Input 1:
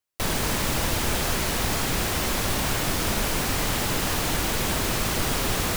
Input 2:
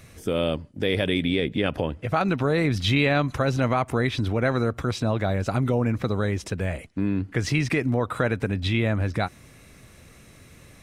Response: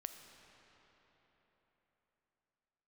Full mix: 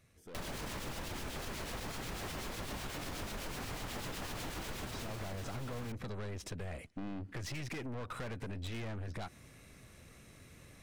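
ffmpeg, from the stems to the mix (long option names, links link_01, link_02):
-filter_complex "[0:a]highshelf=frequency=7000:gain=-7.5,alimiter=limit=-19dB:level=0:latency=1,acrossover=split=2100[link_01][link_02];[link_01]aeval=exprs='val(0)*(1-0.5/2+0.5/2*cos(2*PI*8.1*n/s))':channel_layout=same[link_03];[link_02]aeval=exprs='val(0)*(1-0.5/2-0.5/2*cos(2*PI*8.1*n/s))':channel_layout=same[link_04];[link_03][link_04]amix=inputs=2:normalize=0,adelay=150,volume=-5.5dB[link_05];[1:a]aeval=exprs='(tanh(31.6*val(0)+0.45)-tanh(0.45))/31.6':channel_layout=same,volume=-5.5dB,afade=type=in:start_time=4.62:duration=0.78:silence=0.251189,asplit=2[link_06][link_07];[link_07]apad=whole_len=261041[link_08];[link_05][link_08]sidechaincompress=threshold=-43dB:ratio=8:attack=16:release=784[link_09];[link_09][link_06]amix=inputs=2:normalize=0,acompressor=threshold=-38dB:ratio=6"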